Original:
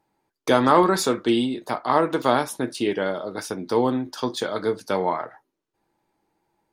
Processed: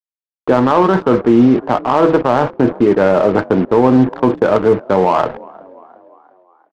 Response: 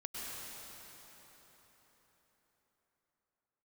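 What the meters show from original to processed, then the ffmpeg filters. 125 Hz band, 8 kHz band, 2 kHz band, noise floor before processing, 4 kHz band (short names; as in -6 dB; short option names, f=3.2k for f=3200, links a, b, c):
+13.0 dB, under -10 dB, +5.5 dB, -81 dBFS, -2.5 dB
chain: -filter_complex "[0:a]lowpass=1.3k,bandreject=f=162.2:t=h:w=4,bandreject=f=324.4:t=h:w=4,bandreject=f=486.6:t=h:w=4,bandreject=f=648.8:t=h:w=4,adynamicequalizer=threshold=0.02:dfrequency=310:dqfactor=1.6:tfrequency=310:tqfactor=1.6:attack=5:release=100:ratio=0.375:range=3:mode=cutabove:tftype=bell,areverse,acompressor=threshold=-28dB:ratio=6,areverse,acrusher=bits=6:mix=0:aa=0.5,asplit=5[a][b][c][d][e];[b]adelay=351,afreqshift=43,volume=-24dB[f];[c]adelay=702,afreqshift=86,volume=-28.6dB[g];[d]adelay=1053,afreqshift=129,volume=-33.2dB[h];[e]adelay=1404,afreqshift=172,volume=-37.7dB[i];[a][f][g][h][i]amix=inputs=5:normalize=0,adynamicsmooth=sensitivity=3.5:basefreq=1k,alimiter=level_in=23.5dB:limit=-1dB:release=50:level=0:latency=1,volume=-1dB"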